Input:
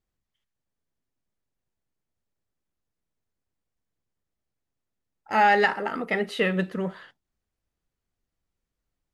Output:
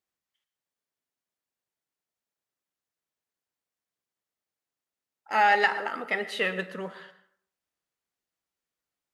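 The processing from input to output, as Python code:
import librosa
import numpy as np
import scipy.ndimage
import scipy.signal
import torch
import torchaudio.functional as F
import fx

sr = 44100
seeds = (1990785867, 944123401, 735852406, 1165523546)

y = fx.highpass(x, sr, hz=710.0, slope=6)
y = fx.rev_plate(y, sr, seeds[0], rt60_s=0.61, hf_ratio=0.6, predelay_ms=95, drr_db=13.5)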